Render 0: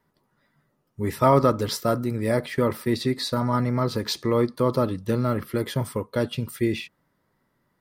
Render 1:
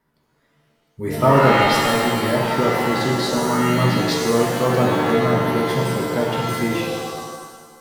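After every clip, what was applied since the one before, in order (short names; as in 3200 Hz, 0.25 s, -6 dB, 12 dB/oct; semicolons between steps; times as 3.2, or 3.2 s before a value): shimmer reverb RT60 1.5 s, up +7 st, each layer -2 dB, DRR -1 dB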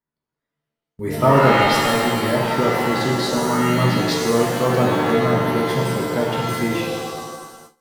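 gate with hold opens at -32 dBFS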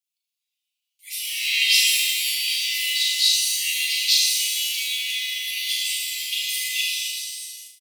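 steep high-pass 2400 Hz 72 dB/oct; comb 4.4 ms, depth 49%; flutter echo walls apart 6.6 m, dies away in 0.53 s; gain +6.5 dB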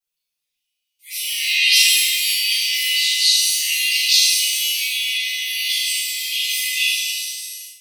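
notch 7100 Hz, Q 15; spectral gate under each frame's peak -30 dB strong; shoebox room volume 38 m³, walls mixed, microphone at 2 m; gain -5 dB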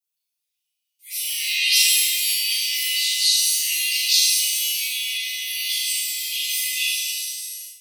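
high shelf 4600 Hz +9 dB; gain -7.5 dB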